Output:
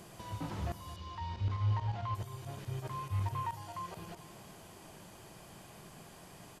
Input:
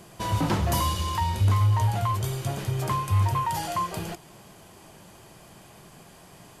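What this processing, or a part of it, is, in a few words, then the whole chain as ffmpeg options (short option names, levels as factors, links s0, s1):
de-esser from a sidechain: -filter_complex "[0:a]asplit=2[s0][s1];[s1]highpass=6300,apad=whole_len=291083[s2];[s0][s2]sidechaincompress=threshold=0.00112:ratio=12:attack=1.8:release=26,asettb=1/sr,asplit=3[s3][s4][s5];[s3]atrim=end=0.964[s6];[s4]atrim=start=0.96:end=2.15,asetpts=PTS-STARTPTS,afade=t=in:d=0.004:c=qsin,afade=t=out:st=1.186:d=0.004:c=qsin,lowpass=f=5400:w=0.5412,lowpass=f=5400:w=1.3066[s7];[s5]atrim=start=2.146[s8];[s6][s7]acrossfade=d=0.004:c1=hsin:c2=qsin[s9];[s9][s8]acrossfade=d=0.004:c1=qsin:c2=hsin,asplit=2[s10][s11];[s11]adelay=221,lowpass=f=4900:p=1,volume=0.178,asplit=2[s12][s13];[s13]adelay=221,lowpass=f=4900:p=1,volume=0.52,asplit=2[s14][s15];[s15]adelay=221,lowpass=f=4900:p=1,volume=0.52,asplit=2[s16][s17];[s17]adelay=221,lowpass=f=4900:p=1,volume=0.52,asplit=2[s18][s19];[s19]adelay=221,lowpass=f=4900:p=1,volume=0.52[s20];[s10][s12][s14][s16][s18][s20]amix=inputs=6:normalize=0"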